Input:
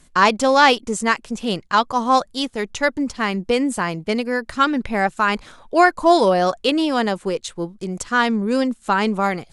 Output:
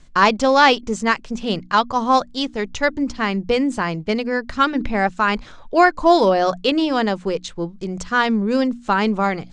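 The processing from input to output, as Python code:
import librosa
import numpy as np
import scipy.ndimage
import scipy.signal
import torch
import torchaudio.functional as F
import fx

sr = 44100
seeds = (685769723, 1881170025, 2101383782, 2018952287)

y = scipy.signal.sosfilt(scipy.signal.butter(4, 6700.0, 'lowpass', fs=sr, output='sos'), x)
y = fx.low_shelf(y, sr, hz=110.0, db=8.5)
y = fx.hum_notches(y, sr, base_hz=60, count=5)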